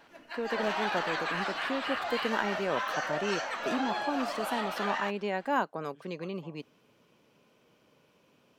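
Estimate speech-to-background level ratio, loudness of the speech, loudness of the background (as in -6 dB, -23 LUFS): -1.5 dB, -35.0 LUFS, -33.5 LUFS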